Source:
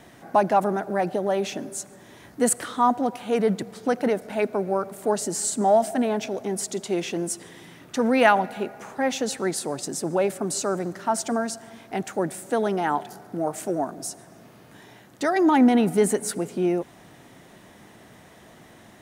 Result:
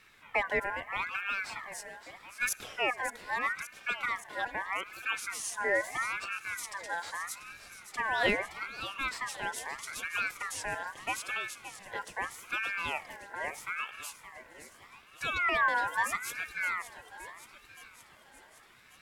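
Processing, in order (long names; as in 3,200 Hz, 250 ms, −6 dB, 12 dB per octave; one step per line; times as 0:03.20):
feedback echo with a high-pass in the loop 570 ms, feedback 68%, high-pass 460 Hz, level −11 dB
ring modulator whose carrier an LFO sweeps 1,600 Hz, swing 25%, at 0.79 Hz
level −8 dB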